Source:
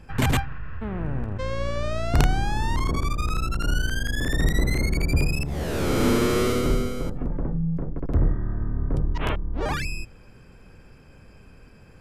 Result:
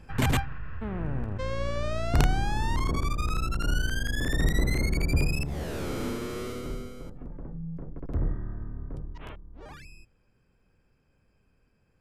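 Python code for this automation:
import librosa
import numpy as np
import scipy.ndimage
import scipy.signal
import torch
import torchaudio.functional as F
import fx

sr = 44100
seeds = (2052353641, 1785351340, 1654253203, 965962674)

y = fx.gain(x, sr, db=fx.line((5.44, -3.0), (6.18, -13.0), (7.41, -13.0), (8.34, -6.5), (9.5, -19.0)))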